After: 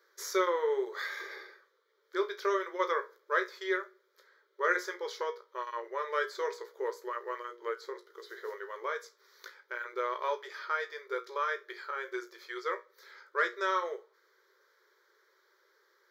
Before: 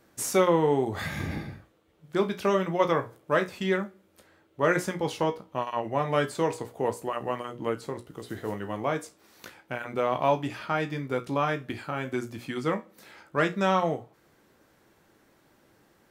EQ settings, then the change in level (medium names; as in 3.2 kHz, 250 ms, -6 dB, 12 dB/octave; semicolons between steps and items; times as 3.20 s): brick-wall FIR high-pass 360 Hz; treble shelf 7.8 kHz -6 dB; static phaser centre 2.7 kHz, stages 6; 0.0 dB